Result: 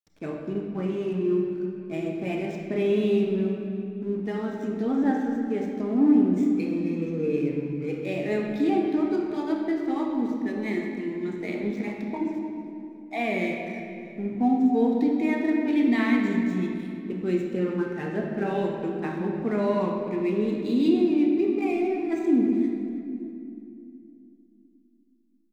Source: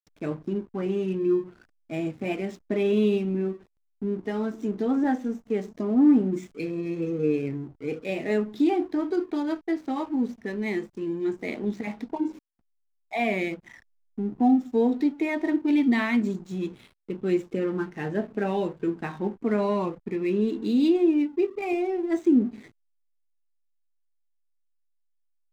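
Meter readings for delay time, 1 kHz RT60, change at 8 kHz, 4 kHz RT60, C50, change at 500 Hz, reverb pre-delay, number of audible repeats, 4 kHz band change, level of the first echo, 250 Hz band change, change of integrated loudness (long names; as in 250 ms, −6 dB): 319 ms, 2.3 s, can't be measured, 2.0 s, 2.0 dB, +0.5 dB, 22 ms, 3, −0.5 dB, −17.5 dB, +1.0 dB, +0.5 dB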